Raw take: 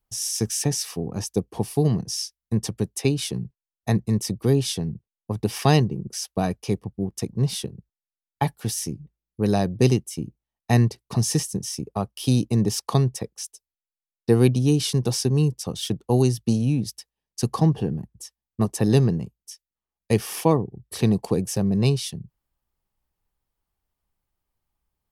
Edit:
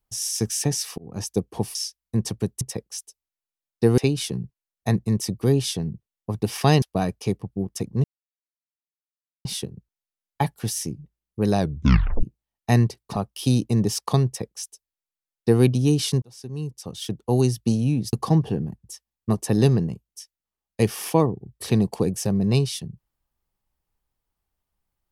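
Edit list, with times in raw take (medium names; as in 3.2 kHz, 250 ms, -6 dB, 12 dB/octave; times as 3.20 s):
0.98–1.24 s: fade in
1.75–2.13 s: delete
5.83–6.24 s: delete
7.46 s: insert silence 1.41 s
9.60 s: tape stop 0.64 s
11.17–11.97 s: delete
13.07–14.44 s: copy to 2.99 s
15.03–16.30 s: fade in linear
16.94–17.44 s: delete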